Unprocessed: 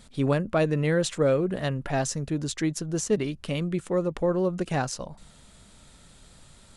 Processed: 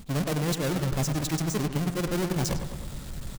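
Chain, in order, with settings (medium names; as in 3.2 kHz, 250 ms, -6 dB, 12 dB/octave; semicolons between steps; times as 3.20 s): square wave that keeps the level; tone controls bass +6 dB, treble +4 dB; reverse; compression 12:1, threshold -30 dBFS, peak gain reduction 18.5 dB; reverse; tempo 2×; filtered feedback delay 103 ms, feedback 60%, low-pass 3.5 kHz, level -8.5 dB; trim +5.5 dB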